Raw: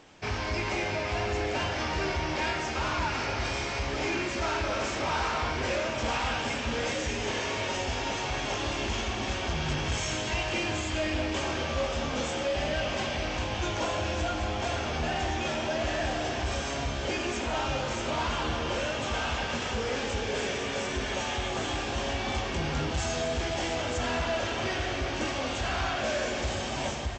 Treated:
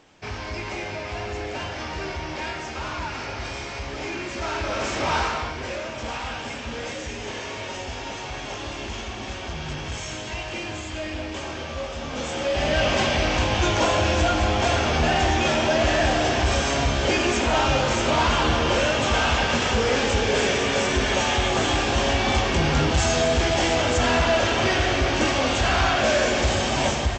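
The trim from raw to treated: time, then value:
4.17 s -1 dB
5.17 s +6.5 dB
5.55 s -1.5 dB
11.99 s -1.5 dB
12.85 s +9.5 dB

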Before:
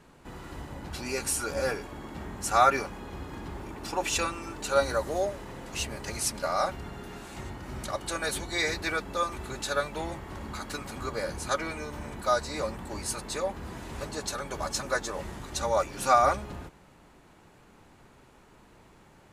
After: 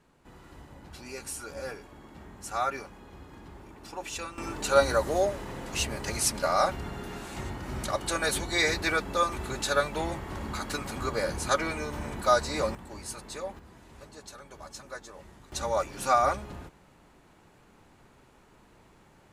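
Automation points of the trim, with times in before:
-8.5 dB
from 4.38 s +3 dB
from 12.75 s -6 dB
from 13.59 s -12.5 dB
from 15.52 s -2 dB

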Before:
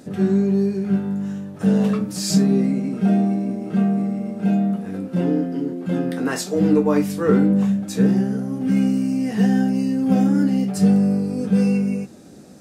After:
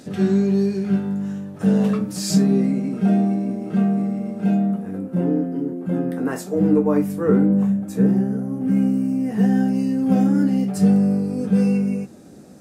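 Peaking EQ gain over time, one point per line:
peaking EQ 4.2 kHz 2.1 oct
0.78 s +5.5 dB
1.26 s -2 dB
4.48 s -2 dB
5.02 s -13.5 dB
9.27 s -13.5 dB
9.68 s -4 dB

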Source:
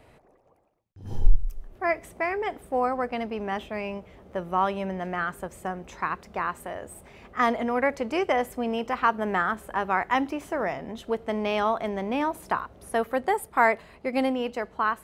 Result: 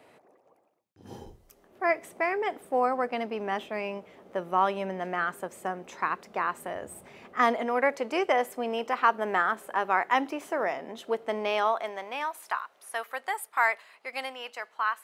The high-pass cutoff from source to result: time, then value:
6.50 s 240 Hz
6.85 s 95 Hz
7.69 s 330 Hz
11.36 s 330 Hz
12.33 s 1.1 kHz

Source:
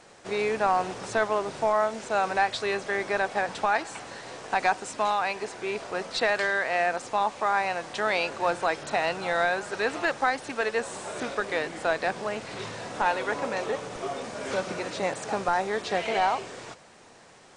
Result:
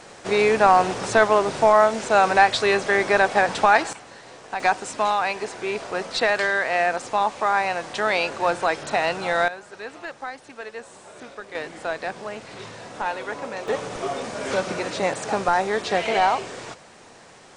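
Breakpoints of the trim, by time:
+8.5 dB
from 3.93 s -3 dB
from 4.60 s +4 dB
from 9.48 s -8.5 dB
from 11.55 s -2 dB
from 13.68 s +5 dB

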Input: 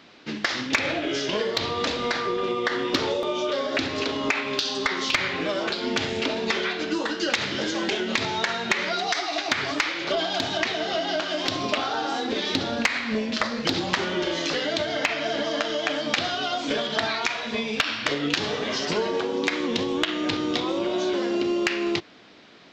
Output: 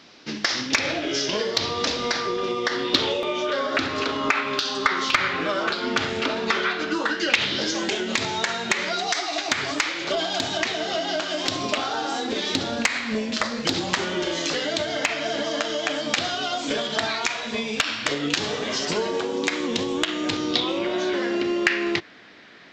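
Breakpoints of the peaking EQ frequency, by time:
peaking EQ +9 dB 0.65 oct
2.72 s 5.5 kHz
3.65 s 1.3 kHz
7.03 s 1.3 kHz
7.86 s 7.6 kHz
20.33 s 7.6 kHz
20.89 s 1.8 kHz

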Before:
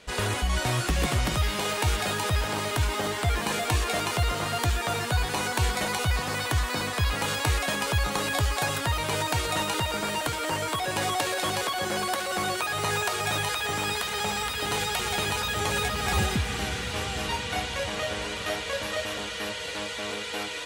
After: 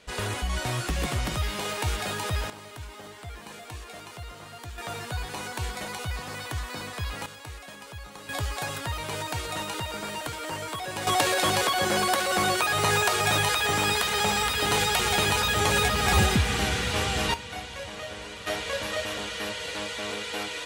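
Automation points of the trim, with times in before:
-3 dB
from 2.50 s -15 dB
from 4.78 s -7 dB
from 7.26 s -16 dB
from 8.29 s -5 dB
from 11.07 s +4 dB
from 17.34 s -7 dB
from 18.47 s 0 dB

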